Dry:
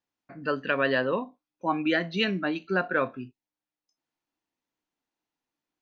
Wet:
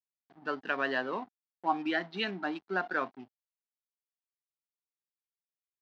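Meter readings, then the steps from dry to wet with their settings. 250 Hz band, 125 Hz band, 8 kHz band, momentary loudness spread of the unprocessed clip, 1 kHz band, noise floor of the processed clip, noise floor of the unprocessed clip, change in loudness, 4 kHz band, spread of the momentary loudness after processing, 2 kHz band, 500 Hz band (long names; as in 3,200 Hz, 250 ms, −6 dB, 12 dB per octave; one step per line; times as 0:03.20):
−8.0 dB, −13.0 dB, can't be measured, 11 LU, −2.5 dB, below −85 dBFS, below −85 dBFS, −6.0 dB, −6.0 dB, 10 LU, −5.0 dB, −8.5 dB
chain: slack as between gear wheels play −36.5 dBFS
loudspeaker in its box 280–5,000 Hz, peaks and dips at 520 Hz −10 dB, 790 Hz +7 dB, 2,500 Hz −4 dB
level −4 dB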